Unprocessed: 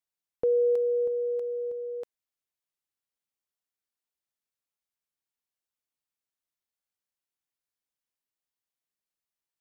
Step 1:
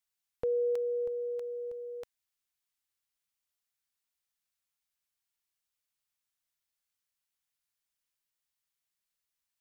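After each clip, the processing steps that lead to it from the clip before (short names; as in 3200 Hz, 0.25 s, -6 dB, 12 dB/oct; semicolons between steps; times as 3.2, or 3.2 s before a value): bell 360 Hz -12 dB 2.4 oct; gain +4.5 dB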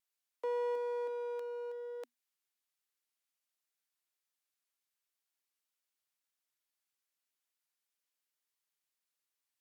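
one-sided clip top -41.5 dBFS; Chebyshev high-pass 240 Hz, order 10; vibrato 0.49 Hz 6.7 cents; gain -1 dB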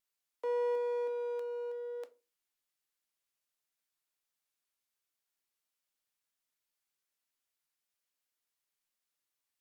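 shoebox room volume 120 m³, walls furnished, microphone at 0.43 m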